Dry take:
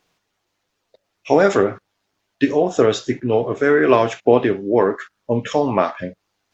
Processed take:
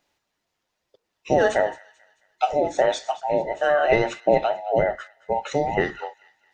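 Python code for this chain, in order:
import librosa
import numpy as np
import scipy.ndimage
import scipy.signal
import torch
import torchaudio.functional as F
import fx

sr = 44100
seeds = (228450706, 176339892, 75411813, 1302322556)

y = fx.band_invert(x, sr, width_hz=1000)
y = fx.echo_wet_highpass(y, sr, ms=219, feedback_pct=41, hz=1700.0, wet_db=-18.0)
y = y * librosa.db_to_amplitude(-5.0)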